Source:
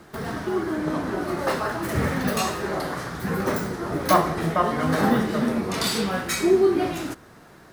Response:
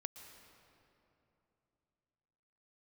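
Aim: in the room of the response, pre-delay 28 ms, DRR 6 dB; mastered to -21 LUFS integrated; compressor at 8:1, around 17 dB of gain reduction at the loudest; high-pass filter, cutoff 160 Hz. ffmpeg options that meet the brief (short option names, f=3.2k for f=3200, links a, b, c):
-filter_complex "[0:a]highpass=160,acompressor=threshold=-32dB:ratio=8,asplit=2[a][b];[1:a]atrim=start_sample=2205,adelay=28[c];[b][c]afir=irnorm=-1:irlink=0,volume=-2.5dB[d];[a][d]amix=inputs=2:normalize=0,volume=13.5dB"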